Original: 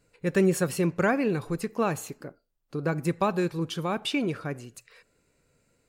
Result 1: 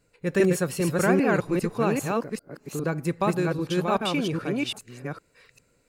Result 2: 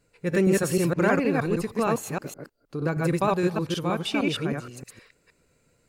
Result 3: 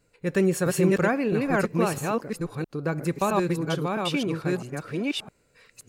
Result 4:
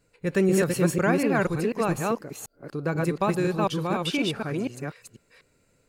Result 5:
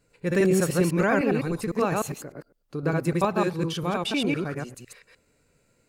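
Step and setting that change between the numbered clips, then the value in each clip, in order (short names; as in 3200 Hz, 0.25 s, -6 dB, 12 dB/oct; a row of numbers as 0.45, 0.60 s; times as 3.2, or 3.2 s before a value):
reverse delay, time: 0.399, 0.156, 0.661, 0.246, 0.101 s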